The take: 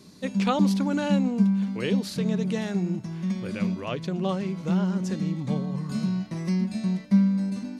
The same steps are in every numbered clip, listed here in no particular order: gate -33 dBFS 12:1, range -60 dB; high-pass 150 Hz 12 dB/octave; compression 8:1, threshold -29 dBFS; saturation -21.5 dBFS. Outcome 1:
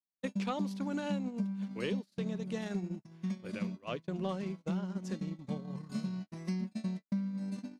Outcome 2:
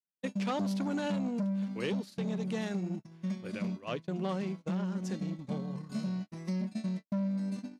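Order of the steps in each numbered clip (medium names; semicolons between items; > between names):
compression > high-pass > saturation > gate; saturation > compression > high-pass > gate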